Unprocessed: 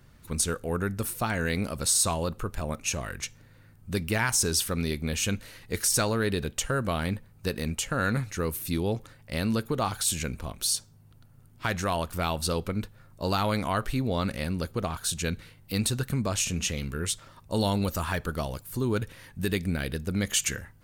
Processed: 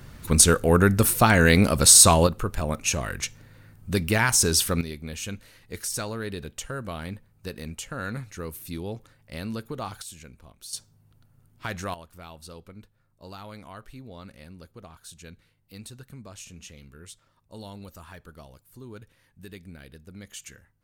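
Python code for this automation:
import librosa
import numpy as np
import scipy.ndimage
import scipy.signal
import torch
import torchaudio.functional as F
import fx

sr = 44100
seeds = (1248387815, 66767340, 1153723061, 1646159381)

y = fx.gain(x, sr, db=fx.steps((0.0, 11.0), (2.27, 4.5), (4.81, -6.0), (10.02, -14.5), (10.73, -4.0), (11.94, -15.5)))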